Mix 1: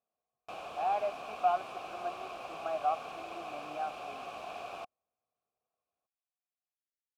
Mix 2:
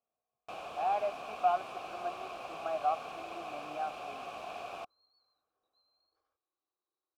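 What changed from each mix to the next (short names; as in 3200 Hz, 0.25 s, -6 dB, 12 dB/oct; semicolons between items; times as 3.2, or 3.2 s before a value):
second sound: unmuted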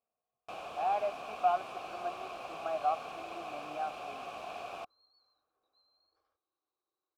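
second sound +3.0 dB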